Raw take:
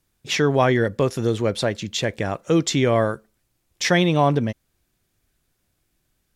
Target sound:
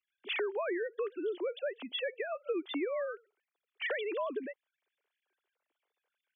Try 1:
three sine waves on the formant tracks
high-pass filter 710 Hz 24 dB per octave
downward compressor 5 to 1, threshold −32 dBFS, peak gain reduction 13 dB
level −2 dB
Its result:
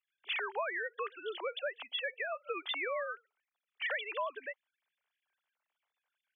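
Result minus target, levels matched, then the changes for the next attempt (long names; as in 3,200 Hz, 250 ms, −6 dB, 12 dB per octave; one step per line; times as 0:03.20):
250 Hz band −14.5 dB
change: high-pass filter 300 Hz 24 dB per octave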